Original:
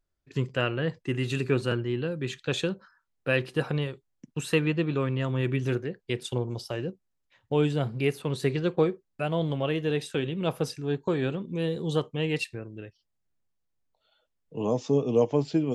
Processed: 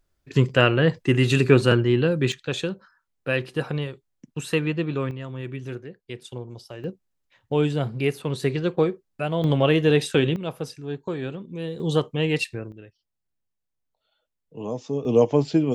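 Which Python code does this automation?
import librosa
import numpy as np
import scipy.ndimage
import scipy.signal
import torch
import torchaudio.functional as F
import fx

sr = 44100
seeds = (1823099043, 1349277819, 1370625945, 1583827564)

y = fx.gain(x, sr, db=fx.steps((0.0, 9.5), (2.32, 1.0), (5.11, -6.0), (6.84, 2.5), (9.44, 9.0), (10.36, -2.5), (11.8, 5.0), (12.72, -3.5), (15.05, 5.0)))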